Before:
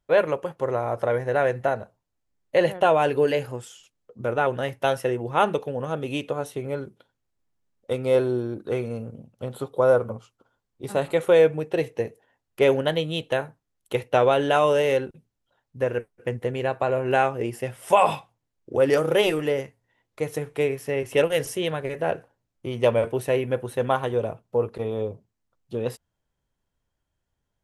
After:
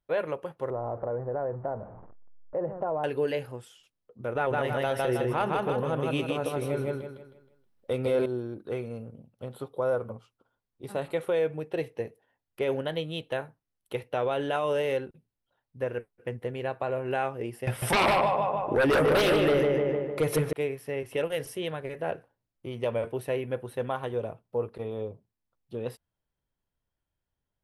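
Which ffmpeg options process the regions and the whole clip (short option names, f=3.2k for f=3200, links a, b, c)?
-filter_complex "[0:a]asettb=1/sr,asplit=3[a][b][c];[a]atrim=end=0.704[d];[b]atrim=start=0.7:end=3.04,asetpts=PTS-STARTPTS,afade=t=in:d=0.004:c=qsin,afade=t=out:st=2.336:d=0.004:c=qsin,aeval=exprs='val(0)+0.5*0.0211*sgn(val(0))':c=same,lowpass=f=1.1k:w=0.5412,lowpass=f=1.1k:w=1.3066,acompressor=threshold=-21dB:ratio=2.5:attack=3.2:release=140:knee=1:detection=peak[e];[c]atrim=start=3.036[f];[d][e]acrossfade=d=0.004:c1=hsin:c2=qsin[g];[g][f]acrossfade=d=0.004:c1=qsin:c2=hsin,asettb=1/sr,asplit=3[h][i][j];[h]atrim=end=4.354[k];[i]atrim=start=4.35:end=8.26,asetpts=PTS-STARTPTS,afade=t=in:d=0.004:c=qsin,afade=t=out:st=3.906:d=0.004:c=qsin,acontrast=66,aecho=1:1:158|316|474|632|790:0.708|0.255|0.0917|0.033|0.0119,atrim=end_sample=172431[l];[j]atrim=start=8.256[m];[k][l]acrossfade=d=0.004:c1=hsin:c2=qsin[n];[n][m]acrossfade=d=0.004:c1=qsin:c2=hsin,asettb=1/sr,asplit=3[o][p][q];[o]atrim=end=17.674[r];[p]atrim=start=17.67:end=20.53,asetpts=PTS-STARTPTS,afade=t=in:d=0.004:c=qsin,afade=t=out:st=2.856:d=0.004:c=qsin,asplit=2[s][t];[t]adelay=151,lowpass=f=2.4k:p=1,volume=-4dB,asplit=2[u][v];[v]adelay=151,lowpass=f=2.4k:p=1,volume=0.53,asplit=2[w][x];[x]adelay=151,lowpass=f=2.4k:p=1,volume=0.53,asplit=2[y][z];[z]adelay=151,lowpass=f=2.4k:p=1,volume=0.53,asplit=2[aa][ab];[ab]adelay=151,lowpass=f=2.4k:p=1,volume=0.53,asplit=2[ac][ad];[ad]adelay=151,lowpass=f=2.4k:p=1,volume=0.53,asplit=2[ae][af];[af]adelay=151,lowpass=f=2.4k:p=1,volume=0.53[ag];[s][u][w][y][aa][ac][ae][ag]amix=inputs=8:normalize=0,atrim=end_sample=126126,aeval=exprs='0.501*sin(PI/2*3.55*val(0)/0.501)':c=same[ah];[q]atrim=start=20.526[ai];[r][ah]acrossfade=d=0.004:c1=hsin:c2=qsin[aj];[aj][ai]acrossfade=d=0.004:c1=qsin:c2=hsin,equalizer=f=6.9k:w=2.7:g=-9,alimiter=limit=-12dB:level=0:latency=1:release=75,volume=-6.5dB"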